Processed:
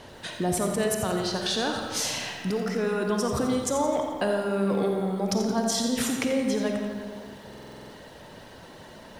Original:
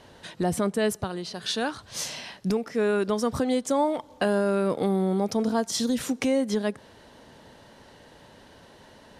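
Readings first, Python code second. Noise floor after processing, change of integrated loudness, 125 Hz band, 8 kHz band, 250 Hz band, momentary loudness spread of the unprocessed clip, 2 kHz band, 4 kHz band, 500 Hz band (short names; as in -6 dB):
-47 dBFS, 0.0 dB, +0.5 dB, +4.0 dB, -0.5 dB, 8 LU, +1.0 dB, +2.5 dB, -1.0 dB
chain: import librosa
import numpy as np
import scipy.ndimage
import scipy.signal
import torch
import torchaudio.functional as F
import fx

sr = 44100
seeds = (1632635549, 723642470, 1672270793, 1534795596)

p1 = fx.over_compress(x, sr, threshold_db=-33.0, ratio=-1.0)
p2 = x + (p1 * 10.0 ** (-1.0 / 20.0))
p3 = fx.dereverb_blind(p2, sr, rt60_s=0.75)
p4 = fx.rev_freeverb(p3, sr, rt60_s=2.1, hf_ratio=0.6, predelay_ms=10, drr_db=2.5)
p5 = fx.buffer_glitch(p4, sr, at_s=(7.49,), block=2048, repeats=8)
p6 = fx.echo_crushed(p5, sr, ms=86, feedback_pct=55, bits=8, wet_db=-10.0)
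y = p6 * 10.0 ** (-4.0 / 20.0)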